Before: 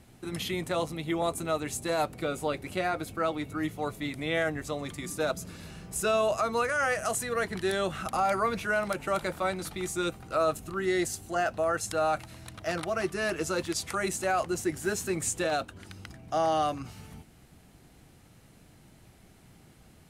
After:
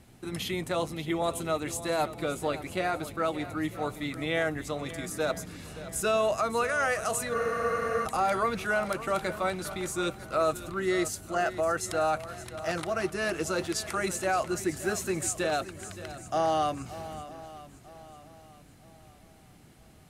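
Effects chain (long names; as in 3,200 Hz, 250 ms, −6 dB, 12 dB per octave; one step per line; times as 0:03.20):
feedback echo with a long and a short gap by turns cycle 951 ms, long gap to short 1.5 to 1, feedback 34%, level −14.5 dB
frozen spectrum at 0:07.37, 0.67 s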